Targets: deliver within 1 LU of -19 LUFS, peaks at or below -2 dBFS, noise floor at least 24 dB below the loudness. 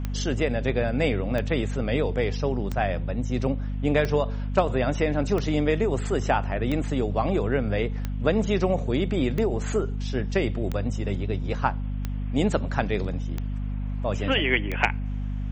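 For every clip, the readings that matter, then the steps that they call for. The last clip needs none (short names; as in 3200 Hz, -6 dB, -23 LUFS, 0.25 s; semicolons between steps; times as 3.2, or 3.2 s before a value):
clicks 12; hum 50 Hz; harmonics up to 250 Hz; hum level -26 dBFS; loudness -26.0 LUFS; peak -5.5 dBFS; loudness target -19.0 LUFS
-> de-click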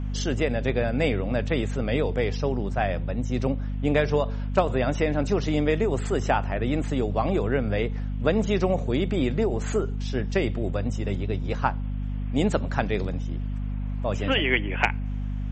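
clicks 0; hum 50 Hz; harmonics up to 250 Hz; hum level -26 dBFS
-> notches 50/100/150/200/250 Hz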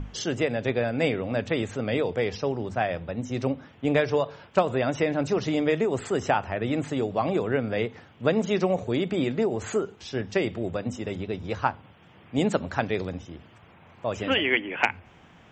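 hum none; loudness -27.0 LUFS; peak -6.0 dBFS; loudness target -19.0 LUFS
-> gain +8 dB; limiter -2 dBFS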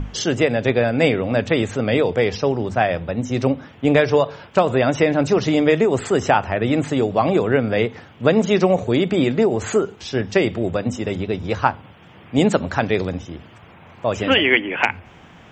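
loudness -19.5 LUFS; peak -2.0 dBFS; noise floor -46 dBFS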